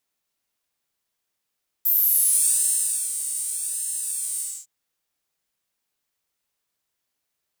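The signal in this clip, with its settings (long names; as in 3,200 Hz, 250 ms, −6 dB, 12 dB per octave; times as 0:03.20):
subtractive patch with pulse-width modulation D4, interval +19 semitones, detune 15 cents, oscillator 2 level −9 dB, sub −17 dB, noise −15 dB, filter highpass, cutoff 7,200 Hz, Q 7.9, filter envelope 1 octave, filter decay 0.61 s, filter sustain 30%, attack 11 ms, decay 1.25 s, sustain −12.5 dB, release 0.26 s, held 2.55 s, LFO 0.86 Hz, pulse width 30%, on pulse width 5%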